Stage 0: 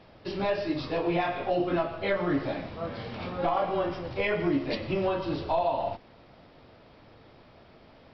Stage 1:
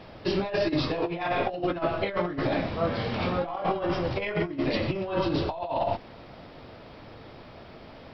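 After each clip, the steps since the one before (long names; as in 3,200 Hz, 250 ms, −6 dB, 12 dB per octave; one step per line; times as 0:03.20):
compressor whose output falls as the input rises −31 dBFS, ratio −0.5
level +4.5 dB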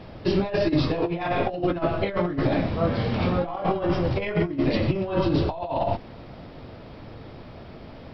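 low-shelf EQ 360 Hz +8 dB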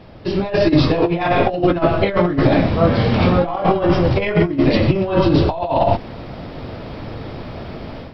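automatic gain control gain up to 11.5 dB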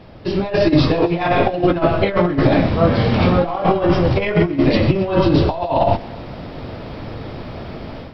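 feedback echo with a high-pass in the loop 133 ms, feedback 74%, level −20.5 dB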